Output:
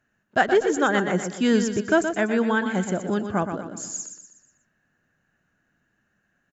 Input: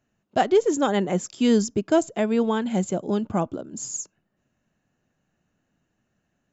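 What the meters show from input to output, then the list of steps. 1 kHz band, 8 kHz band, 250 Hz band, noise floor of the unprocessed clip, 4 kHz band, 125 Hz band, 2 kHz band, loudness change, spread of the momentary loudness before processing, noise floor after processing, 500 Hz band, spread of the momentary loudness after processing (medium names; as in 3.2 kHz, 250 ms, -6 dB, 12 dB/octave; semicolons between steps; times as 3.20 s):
+1.5 dB, no reading, -0.5 dB, -76 dBFS, +0.5 dB, -0.5 dB, +10.5 dB, +0.5 dB, 11 LU, -72 dBFS, -0.5 dB, 11 LU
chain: peaking EQ 1.6 kHz +13.5 dB 0.61 oct; feedback delay 122 ms, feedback 44%, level -8 dB; trim -1.5 dB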